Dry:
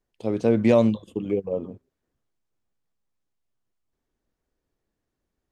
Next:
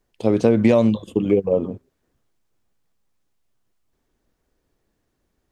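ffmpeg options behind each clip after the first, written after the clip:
ffmpeg -i in.wav -af "acompressor=threshold=-20dB:ratio=6,volume=9dB" out.wav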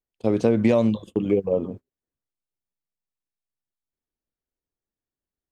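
ffmpeg -i in.wav -af "agate=range=-19dB:threshold=-34dB:ratio=16:detection=peak,volume=-3.5dB" out.wav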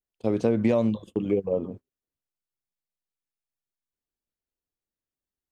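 ffmpeg -i in.wav -af "adynamicequalizer=threshold=0.0141:dfrequency=2000:dqfactor=0.7:tfrequency=2000:tqfactor=0.7:attack=5:release=100:ratio=0.375:range=2:mode=cutabove:tftype=highshelf,volume=-3.5dB" out.wav

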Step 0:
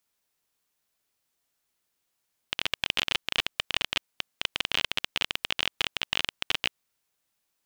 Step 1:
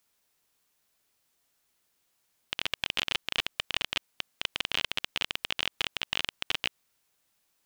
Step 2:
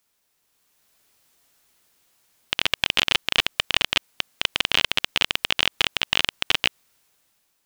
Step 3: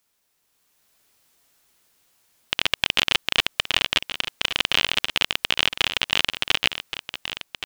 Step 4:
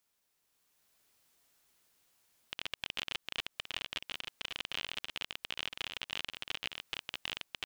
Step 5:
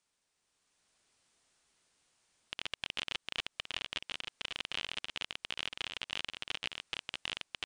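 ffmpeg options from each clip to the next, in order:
ffmpeg -i in.wav -af "alimiter=limit=-15dB:level=0:latency=1:release=43,volume=4.5dB" out.wav
ffmpeg -i in.wav -af "dynaudnorm=framelen=200:gausssize=7:maxgain=8dB,volume=2.5dB" out.wav
ffmpeg -i in.wav -af "aecho=1:1:1124:0.299" out.wav
ffmpeg -i in.wav -af "alimiter=limit=-11dB:level=0:latency=1:release=222,volume=-8dB" out.wav
ffmpeg -i in.wav -af "volume=1dB" -ar 22050 -c:a libmp3lame -b:a 160k out.mp3

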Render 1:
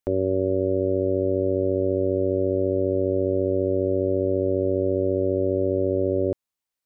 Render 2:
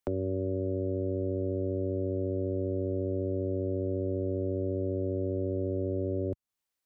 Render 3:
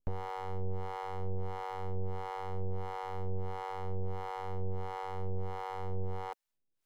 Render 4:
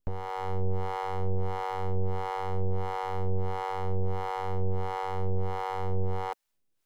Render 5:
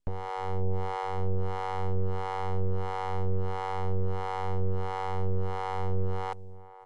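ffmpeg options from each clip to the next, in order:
ffmpeg -i in.wav -filter_complex "[0:a]acrossover=split=86|260[link_01][link_02][link_03];[link_01]acompressor=threshold=-43dB:ratio=4[link_04];[link_02]acompressor=threshold=-34dB:ratio=4[link_05];[link_03]acompressor=threshold=-35dB:ratio=4[link_06];[link_04][link_05][link_06]amix=inputs=3:normalize=0" out.wav
ffmpeg -i in.wav -filter_complex "[0:a]aemphasis=mode=production:type=cd,aeval=exprs='abs(val(0))':channel_layout=same,acrossover=split=510[link_01][link_02];[link_01]aeval=exprs='val(0)*(1-1/2+1/2*cos(2*PI*1.5*n/s))':channel_layout=same[link_03];[link_02]aeval=exprs='val(0)*(1-1/2-1/2*cos(2*PI*1.5*n/s))':channel_layout=same[link_04];[link_03][link_04]amix=inputs=2:normalize=0,volume=2dB" out.wav
ffmpeg -i in.wav -af "dynaudnorm=framelen=220:gausssize=3:maxgain=4.5dB,volume=2.5dB" out.wav
ffmpeg -i in.wav -filter_complex "[0:a]asplit=2[link_01][link_02];[link_02]adelay=1108,volume=-16dB,highshelf=frequency=4000:gain=-24.9[link_03];[link_01][link_03]amix=inputs=2:normalize=0,aresample=22050,aresample=44100" out.wav

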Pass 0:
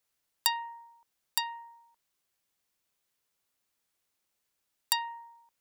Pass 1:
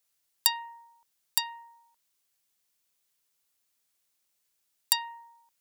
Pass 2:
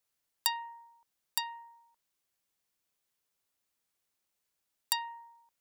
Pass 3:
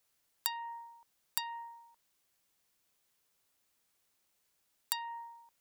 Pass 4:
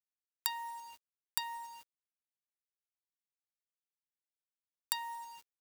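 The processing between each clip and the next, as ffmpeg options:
ffmpeg -i in.wav -af "highshelf=frequency=2900:gain=8.5,volume=-3dB" out.wav
ffmpeg -i in.wav -af "highshelf=frequency=2300:gain=-7.5" out.wav
ffmpeg -i in.wav -af "acompressor=threshold=-38dB:ratio=6,volume=6dB" out.wav
ffmpeg -i in.wav -af "acrusher=bits=8:mix=0:aa=0.000001" out.wav

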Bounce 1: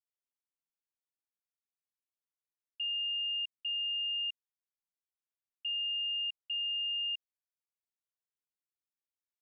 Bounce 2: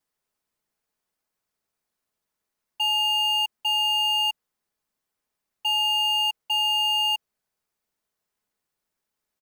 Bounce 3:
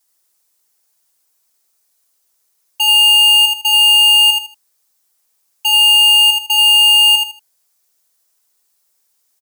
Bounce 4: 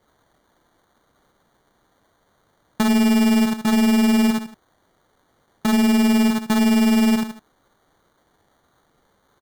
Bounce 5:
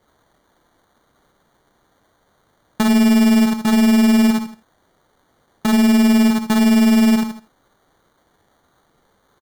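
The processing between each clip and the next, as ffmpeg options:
ffmpeg -i in.wav -filter_complex "[0:a]aecho=1:1:4.7:0.84,asplit=2[link_01][link_02];[link_02]acrusher=samples=12:mix=1:aa=0.000001,volume=-7dB[link_03];[link_01][link_03]amix=inputs=2:normalize=0,volume=8.5dB" out.wav
ffmpeg -i in.wav -filter_complex "[0:a]bass=frequency=250:gain=-13,treble=frequency=4000:gain=14,asplit=2[link_01][link_02];[link_02]aecho=0:1:78|156|234:0.631|0.158|0.0394[link_03];[link_01][link_03]amix=inputs=2:normalize=0,volume=6.5dB" out.wav
ffmpeg -i in.wav -af "acompressor=threshold=-20dB:ratio=2,acrusher=samples=17:mix=1:aa=0.000001" out.wav
ffmpeg -i in.wav -af "aecho=1:1:58|85:0.188|0.119,volume=2dB" out.wav

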